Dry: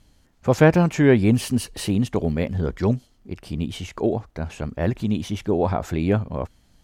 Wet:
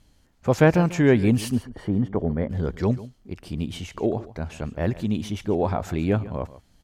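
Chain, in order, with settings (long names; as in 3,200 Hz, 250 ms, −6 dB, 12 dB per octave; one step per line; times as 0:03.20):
0:01.55–0:02.50: Savitzky-Golay smoothing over 41 samples
on a send: single-tap delay 142 ms −17 dB
on the sum: level −2 dB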